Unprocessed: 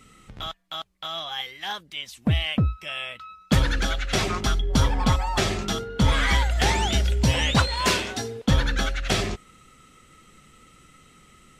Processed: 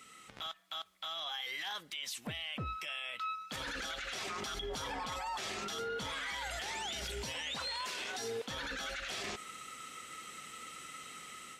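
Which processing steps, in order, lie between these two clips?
high-pass 930 Hz 6 dB/octave; level rider gain up to 8 dB; peak limiter -31.5 dBFS, peak gain reduction 27.5 dB; on a send: reverberation RT60 1.0 s, pre-delay 3 ms, DRR 20 dB

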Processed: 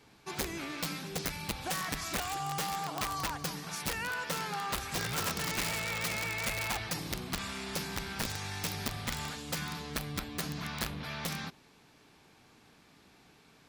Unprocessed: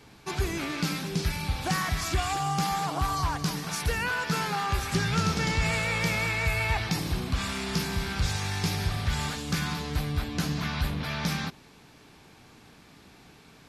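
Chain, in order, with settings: integer overflow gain 20 dB; bass shelf 150 Hz -5.5 dB; trim -6.5 dB

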